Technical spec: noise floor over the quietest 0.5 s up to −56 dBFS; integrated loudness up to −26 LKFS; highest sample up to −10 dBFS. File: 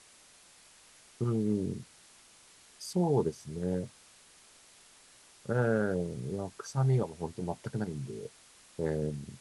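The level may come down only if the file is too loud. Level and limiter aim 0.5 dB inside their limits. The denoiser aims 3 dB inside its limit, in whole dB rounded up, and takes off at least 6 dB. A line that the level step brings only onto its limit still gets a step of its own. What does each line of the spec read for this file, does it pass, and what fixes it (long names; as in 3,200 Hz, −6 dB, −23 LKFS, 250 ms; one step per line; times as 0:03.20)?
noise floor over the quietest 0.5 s −59 dBFS: in spec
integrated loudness −33.0 LKFS: in spec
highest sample −16.5 dBFS: in spec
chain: no processing needed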